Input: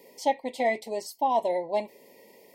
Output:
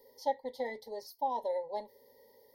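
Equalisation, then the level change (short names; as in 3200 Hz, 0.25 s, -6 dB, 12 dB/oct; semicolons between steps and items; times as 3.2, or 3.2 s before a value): tilt shelf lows +3.5 dB, about 680 Hz; fixed phaser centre 680 Hz, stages 6; fixed phaser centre 1700 Hz, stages 8; 0.0 dB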